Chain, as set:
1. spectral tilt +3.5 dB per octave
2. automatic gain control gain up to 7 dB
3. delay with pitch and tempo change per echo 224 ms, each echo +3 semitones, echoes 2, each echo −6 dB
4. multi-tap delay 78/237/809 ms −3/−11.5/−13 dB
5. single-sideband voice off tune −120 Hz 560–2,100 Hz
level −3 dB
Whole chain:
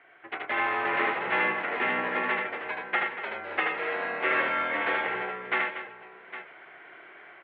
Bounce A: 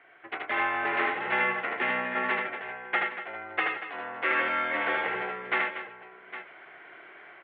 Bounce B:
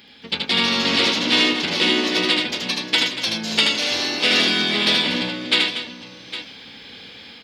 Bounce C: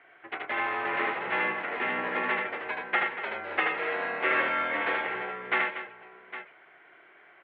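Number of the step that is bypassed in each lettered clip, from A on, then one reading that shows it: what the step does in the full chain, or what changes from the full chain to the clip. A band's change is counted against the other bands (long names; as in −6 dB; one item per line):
3, change in momentary loudness spread +4 LU
5, 4 kHz band +20.0 dB
2, change in crest factor +1.5 dB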